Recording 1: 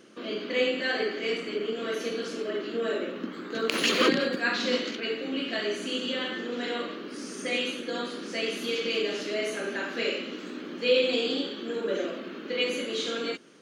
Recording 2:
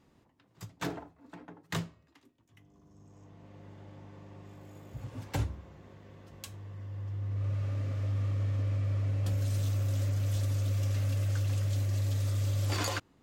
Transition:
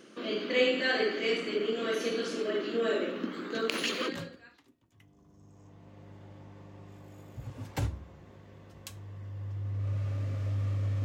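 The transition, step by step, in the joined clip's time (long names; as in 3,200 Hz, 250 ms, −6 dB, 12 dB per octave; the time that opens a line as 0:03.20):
recording 1
0:04.08: continue with recording 2 from 0:01.65, crossfade 1.24 s quadratic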